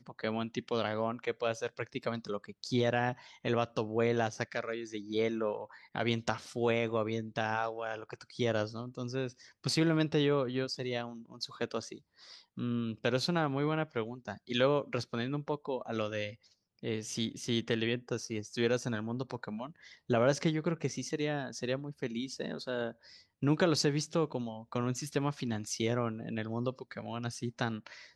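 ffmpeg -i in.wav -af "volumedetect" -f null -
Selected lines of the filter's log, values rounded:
mean_volume: -34.1 dB
max_volume: -13.9 dB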